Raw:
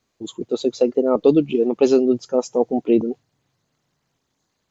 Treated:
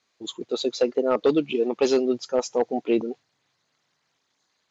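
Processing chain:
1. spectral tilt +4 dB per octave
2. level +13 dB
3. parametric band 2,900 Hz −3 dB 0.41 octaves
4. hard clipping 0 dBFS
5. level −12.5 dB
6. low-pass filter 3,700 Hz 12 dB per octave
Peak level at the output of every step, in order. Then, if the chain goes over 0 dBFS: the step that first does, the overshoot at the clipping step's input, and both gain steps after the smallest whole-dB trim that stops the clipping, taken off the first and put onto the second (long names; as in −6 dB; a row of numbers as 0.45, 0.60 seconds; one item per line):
−6.0, +7.0, +6.5, 0.0, −12.5, −12.0 dBFS
step 2, 6.5 dB
step 2 +6 dB, step 5 −5.5 dB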